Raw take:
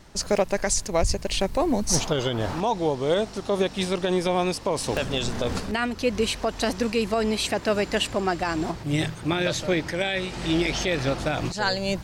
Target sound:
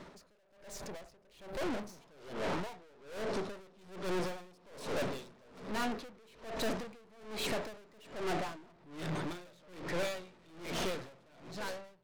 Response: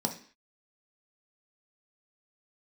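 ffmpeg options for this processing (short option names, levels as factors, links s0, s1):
-filter_complex "[0:a]bass=f=250:g=-11,treble=f=4000:g=-12,asplit=2[s0][s1];[1:a]atrim=start_sample=2205,asetrate=33516,aresample=44100,lowpass=2100[s2];[s1][s2]afir=irnorm=-1:irlink=0,volume=0.237[s3];[s0][s3]amix=inputs=2:normalize=0,aeval=exprs='(tanh(79.4*val(0)+0.5)-tanh(0.5))/79.4':c=same,alimiter=level_in=10.6:limit=0.0631:level=0:latency=1:release=32,volume=0.0944,dynaudnorm=f=510:g=5:m=3.55,aeval=exprs='val(0)*pow(10,-28*(0.5-0.5*cos(2*PI*1.2*n/s))/20)':c=same,volume=1.68"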